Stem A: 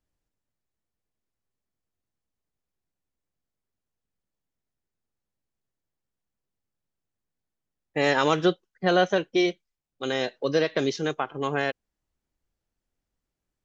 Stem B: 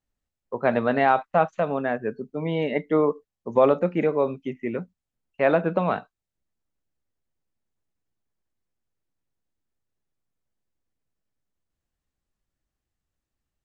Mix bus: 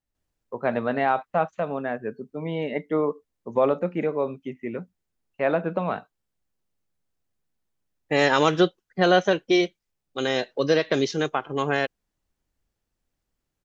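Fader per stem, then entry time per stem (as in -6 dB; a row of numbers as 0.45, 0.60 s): +2.5, -3.0 dB; 0.15, 0.00 s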